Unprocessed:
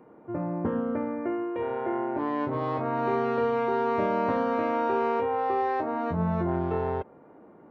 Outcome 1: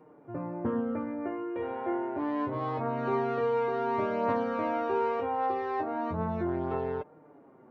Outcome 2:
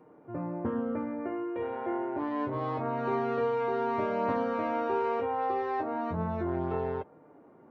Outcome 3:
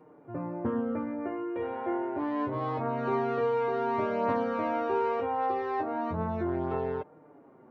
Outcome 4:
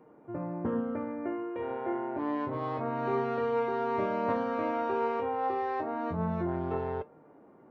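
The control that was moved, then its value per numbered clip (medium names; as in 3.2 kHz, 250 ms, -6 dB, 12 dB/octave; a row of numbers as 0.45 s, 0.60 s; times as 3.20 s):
flange, regen: +19%, -37%, -3%, +73%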